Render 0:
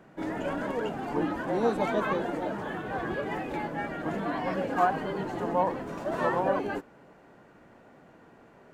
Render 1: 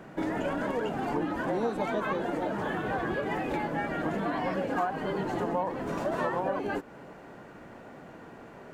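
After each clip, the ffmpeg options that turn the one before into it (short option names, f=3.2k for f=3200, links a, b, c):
-af "acompressor=threshold=-36dB:ratio=4,volume=7.5dB"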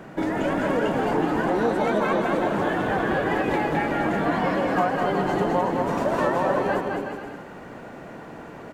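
-af "aecho=1:1:210|367.5|485.6|574.2|640.7:0.631|0.398|0.251|0.158|0.1,volume=5.5dB"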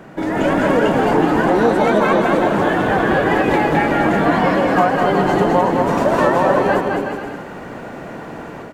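-af "dynaudnorm=f=210:g=3:m=6.5dB,volume=2dB"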